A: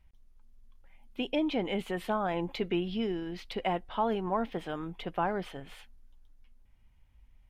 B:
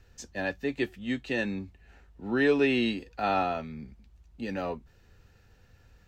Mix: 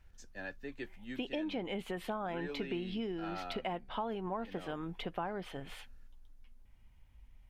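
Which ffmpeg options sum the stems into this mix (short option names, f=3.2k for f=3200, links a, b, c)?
-filter_complex "[0:a]volume=1.5dB[a];[1:a]equalizer=f=1.5k:t=o:w=0.42:g=7.5,volume=-13.5dB[b];[a][b]amix=inputs=2:normalize=0,acompressor=threshold=-37dB:ratio=3"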